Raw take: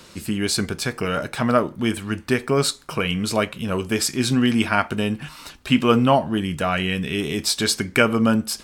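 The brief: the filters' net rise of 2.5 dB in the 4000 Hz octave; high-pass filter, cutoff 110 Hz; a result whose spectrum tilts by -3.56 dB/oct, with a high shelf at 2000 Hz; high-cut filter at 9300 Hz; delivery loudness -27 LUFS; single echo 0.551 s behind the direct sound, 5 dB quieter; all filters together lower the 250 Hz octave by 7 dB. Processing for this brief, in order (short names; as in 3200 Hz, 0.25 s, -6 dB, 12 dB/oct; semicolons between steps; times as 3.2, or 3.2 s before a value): HPF 110 Hz; LPF 9300 Hz; bell 250 Hz -8 dB; high shelf 2000 Hz -4.5 dB; bell 4000 Hz +8 dB; echo 0.551 s -5 dB; gain -4.5 dB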